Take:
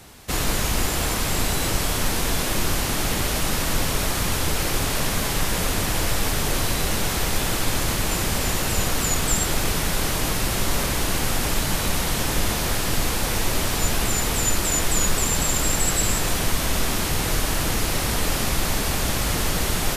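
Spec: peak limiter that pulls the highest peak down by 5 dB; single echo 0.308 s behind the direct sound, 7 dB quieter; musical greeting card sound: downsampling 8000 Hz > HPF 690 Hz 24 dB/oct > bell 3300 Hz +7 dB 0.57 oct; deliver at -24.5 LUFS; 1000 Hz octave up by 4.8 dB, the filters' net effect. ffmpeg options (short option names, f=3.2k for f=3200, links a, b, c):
-af "equalizer=f=1k:t=o:g=6.5,alimiter=limit=-12dB:level=0:latency=1,aecho=1:1:308:0.447,aresample=8000,aresample=44100,highpass=f=690:w=0.5412,highpass=f=690:w=1.3066,equalizer=f=3.3k:t=o:w=0.57:g=7"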